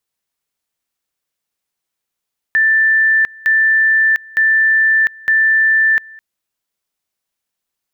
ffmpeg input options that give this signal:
-f lavfi -i "aevalsrc='pow(10,(-9-25*gte(mod(t,0.91),0.7))/20)*sin(2*PI*1770*t)':d=3.64:s=44100"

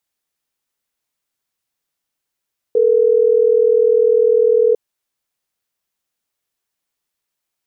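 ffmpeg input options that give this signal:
-f lavfi -i "aevalsrc='0.237*(sin(2*PI*440*t)+sin(2*PI*480*t))*clip(min(mod(t,6),2-mod(t,6))/0.005,0,1)':d=3.12:s=44100"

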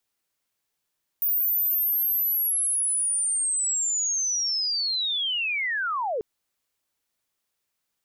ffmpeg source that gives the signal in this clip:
-f lavfi -i "aevalsrc='pow(10,(-20.5-4*t/4.99)/20)*sin(2*PI*(15000*t-14600*t*t/(2*4.99)))':d=4.99:s=44100"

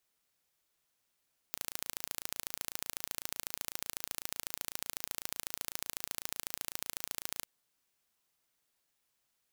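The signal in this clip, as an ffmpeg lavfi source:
-f lavfi -i "aevalsrc='0.376*eq(mod(n,1575),0)*(0.5+0.5*eq(mod(n,3150),0))':d=5.92:s=44100"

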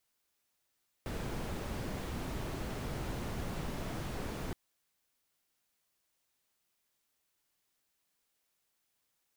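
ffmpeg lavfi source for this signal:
-f lavfi -i "anoisesrc=c=brown:a=0.0589:d=3.47:r=44100:seed=1"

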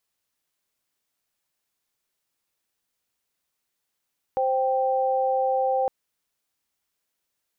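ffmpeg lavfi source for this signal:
-f lavfi -i "aevalsrc='0.0708*(sin(2*PI*523.25*t)+sin(2*PI*783.99*t))':d=1.51:s=44100"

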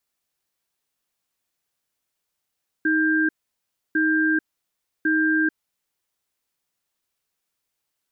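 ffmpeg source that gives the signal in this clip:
-f lavfi -i "aevalsrc='0.1*(sin(2*PI*314*t)+sin(2*PI*1590*t))*clip(min(mod(t,1.1),0.44-mod(t,1.1))/0.005,0,1)':d=3.21:s=44100"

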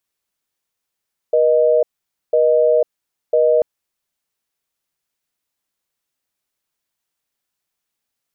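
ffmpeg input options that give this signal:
-f lavfi -i "aevalsrc='0.211*(sin(2*PI*480*t)+sin(2*PI*620*t))*clip(min(mod(t,1),0.5-mod(t,1))/0.005,0,1)':d=2.29:s=44100"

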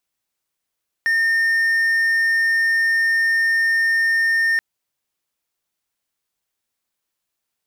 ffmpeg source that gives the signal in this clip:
-f lavfi -i "aevalsrc='0.224*(1-4*abs(mod(1820*t+0.25,1)-0.5))':d=3.53:s=44100"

